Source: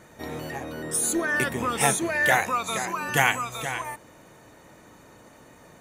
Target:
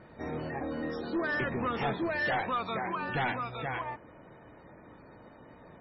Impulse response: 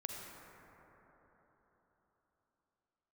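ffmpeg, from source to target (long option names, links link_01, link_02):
-filter_complex "[0:a]acrossover=split=7500[link_01][link_02];[link_02]acompressor=threshold=-37dB:ratio=4:attack=1:release=60[link_03];[link_01][link_03]amix=inputs=2:normalize=0,highshelf=frequency=2300:gain=-11.5,asettb=1/sr,asplit=3[link_04][link_05][link_06];[link_04]atrim=end=0.614[link_07];[link_05]atrim=start=0.61:end=1.01,asetpts=PTS-STARTPTS,afade=type=in:duration=0.004:curve=qsin,afade=type=out:start_time=0.396:duration=0.004:curve=qsin,aecho=1:1:3.8:0.73,atrim=end_sample=17640[link_08];[link_06]atrim=start=1.006[link_09];[link_07][link_08]acrossfade=duration=0.004:curve1=hsin:curve2=qsin[link_10];[link_10][link_09]acrossfade=duration=0.004:curve1=qsin:curve2=hsin,asettb=1/sr,asplit=3[link_11][link_12][link_13];[link_11]atrim=end=1.674[link_14];[link_12]atrim=start=1.67:end=2.21,asetpts=PTS-STARTPTS,afade=type=in:duration=0.004:curve=qsin,afade=type=out:start_time=0.536:duration=0.004:curve=qsin,bandreject=frequency=199.2:width_type=h:width=4,bandreject=frequency=398.4:width_type=h:width=4,bandreject=frequency=597.6:width_type=h:width=4,bandreject=frequency=796.8:width_type=h:width=4,bandreject=frequency=996:width_type=h:width=4,bandreject=frequency=1195.2:width_type=h:width=4,bandreject=frequency=1394.4:width_type=h:width=4,bandreject=frequency=1593.6:width_type=h:width=4,bandreject=frequency=1792.8:width_type=h:width=4,bandreject=frequency=1992:width_type=h:width=4,bandreject=frequency=2191.2:width_type=h:width=4[link_15];[link_13]atrim=start=2.206[link_16];[link_14][link_15]acrossfade=duration=0.004:curve1=hsin:curve2=qsin[link_17];[link_17][link_16]acrossfade=duration=0.004:curve1=qsin:curve2=hsin,asettb=1/sr,asplit=3[link_18][link_19][link_20];[link_18]atrim=end=3.064[link_21];[link_19]atrim=start=3.06:end=3.66,asetpts=PTS-STARTPTS,afade=type=in:duration=0.004:curve=qsin,afade=type=out:start_time=0.596:duration=0.004:curve=qsin,bandreject=frequency=1100:width=7.9[link_22];[link_20]atrim=start=3.656[link_23];[link_21][link_22]acrossfade=duration=0.004:curve1=hsin:curve2=qsin[link_24];[link_24][link_23]acrossfade=duration=0.004:curve1=qsin:curve2=hsin,asoftclip=type=tanh:threshold=-25.5dB" -ar 24000 -c:a libmp3lame -b:a 16k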